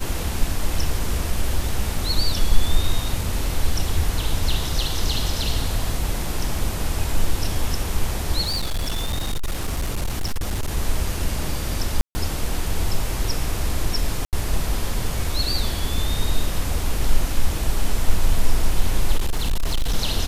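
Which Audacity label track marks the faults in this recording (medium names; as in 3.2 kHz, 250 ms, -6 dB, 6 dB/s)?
8.440000	10.770000	clipped -19.5 dBFS
12.010000	12.150000	dropout 140 ms
14.250000	14.330000	dropout 78 ms
19.170000	19.940000	clipped -16 dBFS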